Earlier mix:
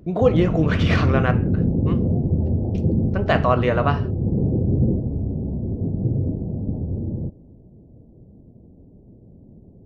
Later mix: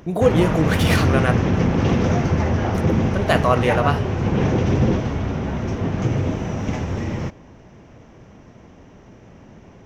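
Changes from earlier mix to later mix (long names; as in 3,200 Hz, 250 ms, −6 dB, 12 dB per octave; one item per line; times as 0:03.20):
speech: remove high-frequency loss of the air 180 metres
background: remove Gaussian smoothing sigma 18 samples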